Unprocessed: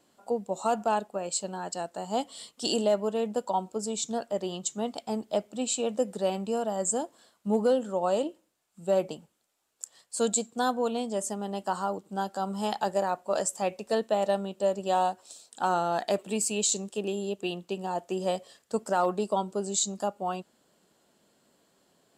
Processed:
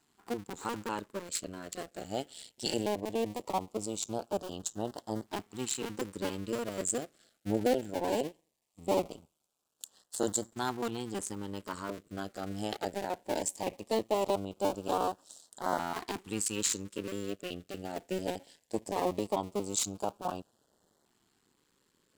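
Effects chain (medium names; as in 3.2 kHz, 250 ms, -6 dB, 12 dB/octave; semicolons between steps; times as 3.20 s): cycle switcher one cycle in 2, muted; LFO notch saw up 0.19 Hz 530–2600 Hz; trim -1.5 dB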